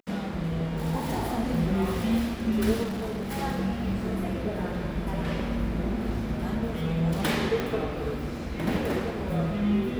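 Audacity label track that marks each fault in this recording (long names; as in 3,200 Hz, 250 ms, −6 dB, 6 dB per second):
2.830000	3.380000	clipping −28.5 dBFS
7.600000	7.600000	click −15 dBFS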